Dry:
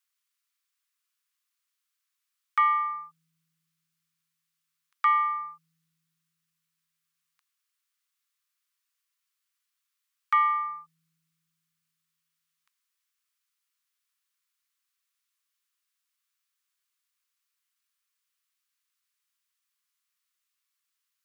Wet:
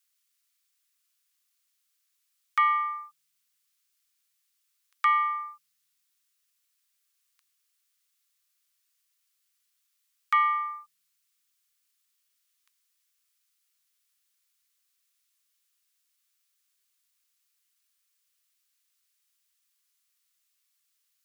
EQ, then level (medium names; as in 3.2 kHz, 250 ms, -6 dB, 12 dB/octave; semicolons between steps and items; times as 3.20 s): high-pass 700 Hz 12 dB/octave; treble shelf 2.2 kHz +10 dB; -2.5 dB